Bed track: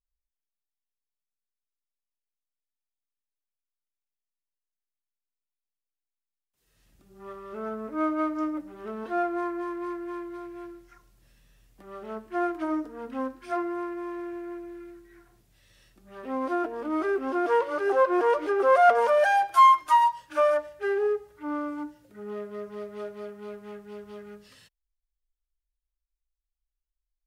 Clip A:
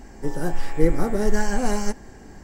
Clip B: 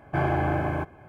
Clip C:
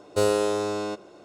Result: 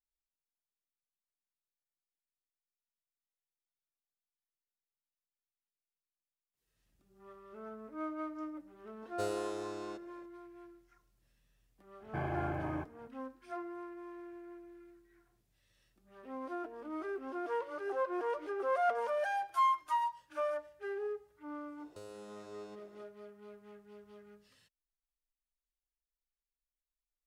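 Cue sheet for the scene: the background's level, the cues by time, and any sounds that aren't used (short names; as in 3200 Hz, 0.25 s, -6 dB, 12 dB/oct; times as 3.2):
bed track -13 dB
9.02 add C -15.5 dB
12 add B -12.5 dB
21.8 add C -14.5 dB + compressor 3:1, threshold -36 dBFS
not used: A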